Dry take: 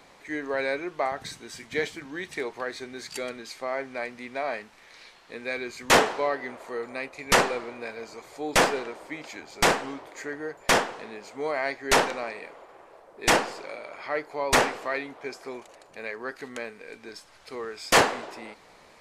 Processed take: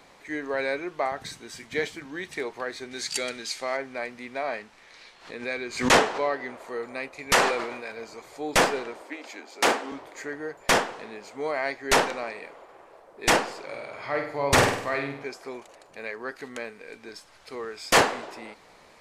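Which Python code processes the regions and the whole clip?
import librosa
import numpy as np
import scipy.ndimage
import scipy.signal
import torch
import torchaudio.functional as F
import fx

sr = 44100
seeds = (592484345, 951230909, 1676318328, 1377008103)

y = fx.chain(x, sr, fx.lowpass(hz=9500.0, slope=12),
    fx.high_shelf(hz=2500.0, db=12.0),
    fx.notch(hz=1100.0, q=15.0), at=(2.91, 3.77))
y = fx.chain(y, sr, fx.lowpass(hz=10000.0, slope=12),
    fx.pre_swell(db_per_s=120.0), at=(4.48, 6.55))
y = fx.chain(y, sr, fx.low_shelf(hz=400.0, db=-7.5),
    fx.sustainer(db_per_s=50.0), at=(7.32, 7.92))
y = fx.chain(y, sr, fx.ellip_highpass(hz=230.0, order=4, stop_db=40),
    fx.doppler_dist(depth_ms=0.17), at=(9.02, 9.92))
y = fx.chain(y, sr, fx.peak_eq(hz=120.0, db=13.5, octaves=0.95),
    fx.room_flutter(wall_m=8.5, rt60_s=0.57), at=(13.67, 15.24))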